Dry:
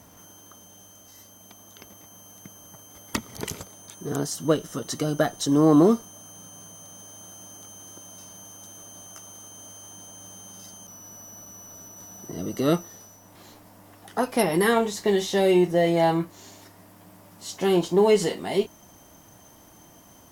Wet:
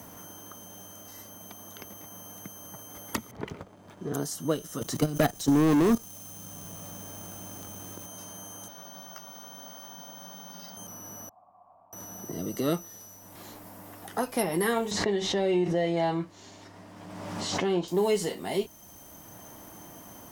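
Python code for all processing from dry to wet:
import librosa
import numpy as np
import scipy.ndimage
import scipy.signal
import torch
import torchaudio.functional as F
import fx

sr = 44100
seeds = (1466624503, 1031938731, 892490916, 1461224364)

y = fx.chain(x, sr, fx.lowpass(hz=2100.0, slope=12),
    fx.backlash(play_db=-51.0), at=(3.31, 4.14))
y = fx.chain(y, sr, fx.leveller(passes=3),
    fx.level_steps(step_db=15),
    fx.low_shelf(hz=190.0, db=9.0), at=(4.81, 8.06))
y = fx.chain(y, sr, fx.cabinet(low_hz=130.0, low_slope=12, high_hz=5600.0, hz=(330.0, 460.0, 4600.0), db=(-6, -4, 6)),
    fx.hum_notches(base_hz=50, count=8),
    fx.resample_bad(factor=2, down='none', up='hold'), at=(8.68, 10.77))
y = fx.chain(y, sr, fx.formant_cascade(vowel='a'),
    fx.peak_eq(hz=390.0, db=-8.0, octaves=0.84), at=(11.29, 11.93))
y = fx.chain(y, sr, fx.air_absorb(metres=120.0),
    fx.pre_swell(db_per_s=44.0), at=(14.91, 17.88))
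y = fx.high_shelf(y, sr, hz=9600.0, db=10.5)
y = fx.band_squash(y, sr, depth_pct=40)
y = F.gain(torch.from_numpy(y), -5.0).numpy()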